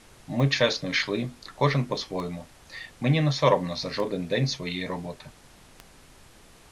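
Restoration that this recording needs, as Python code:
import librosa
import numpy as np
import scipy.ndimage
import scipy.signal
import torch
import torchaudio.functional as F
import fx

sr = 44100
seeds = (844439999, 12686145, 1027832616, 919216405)

y = fx.fix_declick_ar(x, sr, threshold=10.0)
y = fx.noise_reduce(y, sr, print_start_s=6.15, print_end_s=6.65, reduce_db=18.0)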